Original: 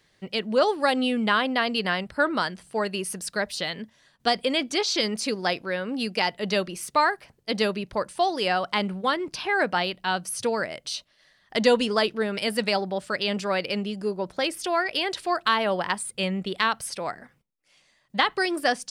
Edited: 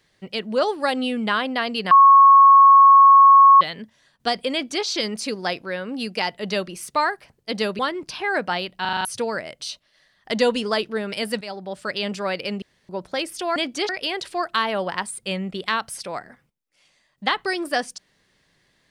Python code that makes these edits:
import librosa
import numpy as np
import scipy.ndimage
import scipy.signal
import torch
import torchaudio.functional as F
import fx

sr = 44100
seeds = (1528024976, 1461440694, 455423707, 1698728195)

y = fx.edit(x, sr, fx.bleep(start_s=1.91, length_s=1.7, hz=1100.0, db=-7.0),
    fx.duplicate(start_s=4.52, length_s=0.33, to_s=14.81),
    fx.cut(start_s=7.79, length_s=1.25),
    fx.stutter_over(start_s=10.06, slice_s=0.04, count=6),
    fx.fade_in_from(start_s=12.66, length_s=0.46, floor_db=-13.5),
    fx.room_tone_fill(start_s=13.87, length_s=0.27), tone=tone)